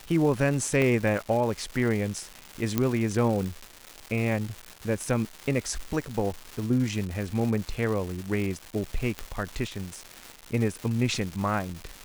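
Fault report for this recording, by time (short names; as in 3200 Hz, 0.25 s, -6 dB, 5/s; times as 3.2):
crackle 470/s -32 dBFS
0.82 pop -14 dBFS
2.78 pop -10 dBFS
9.19 pop -14 dBFS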